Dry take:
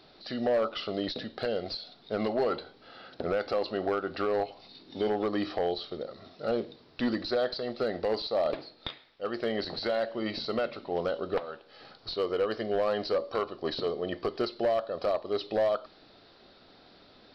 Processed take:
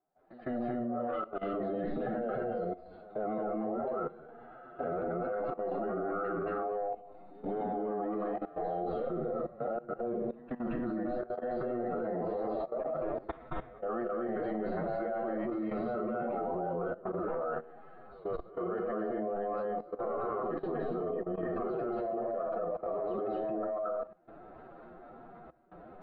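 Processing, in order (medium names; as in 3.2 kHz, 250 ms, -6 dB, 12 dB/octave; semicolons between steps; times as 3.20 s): low-pass 1.6 kHz 24 dB/octave; pre-echo 99 ms -17.5 dB; gate with hold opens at -50 dBFS; compressor with a negative ratio -32 dBFS, ratio -1; reverberation RT60 0.40 s, pre-delay 148 ms, DRR -5 dB; time stretch by phase-locked vocoder 1.5×; peaking EQ 720 Hz +10.5 dB 0.41 oct; square tremolo 0.7 Hz, depth 60%, duty 85%; peaking EQ 100 Hz -11 dB 0.46 oct; level held to a coarse grid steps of 17 dB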